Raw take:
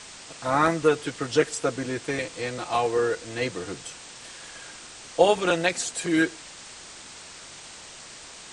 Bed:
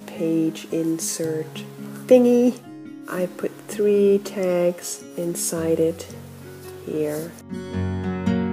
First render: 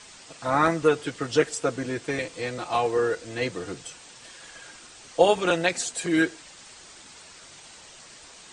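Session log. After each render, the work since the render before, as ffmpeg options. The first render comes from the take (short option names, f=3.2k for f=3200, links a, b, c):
-af "afftdn=nr=6:nf=-44"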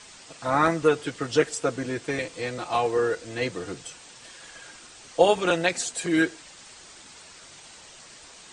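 -af anull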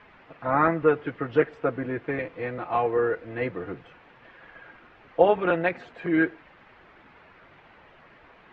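-af "lowpass=f=2.2k:w=0.5412,lowpass=f=2.2k:w=1.3066"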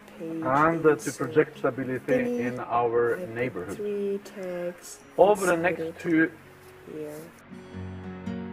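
-filter_complex "[1:a]volume=-12.5dB[a];[0:a][a]amix=inputs=2:normalize=0"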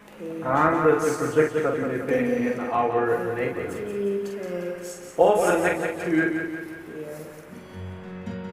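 -filter_complex "[0:a]asplit=2[a][b];[b]adelay=45,volume=-5dB[c];[a][c]amix=inputs=2:normalize=0,asplit=2[d][e];[e]aecho=0:1:178|356|534|712|890|1068|1246:0.473|0.251|0.133|0.0704|0.0373|0.0198|0.0105[f];[d][f]amix=inputs=2:normalize=0"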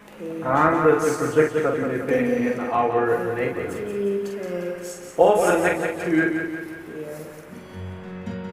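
-af "volume=2dB"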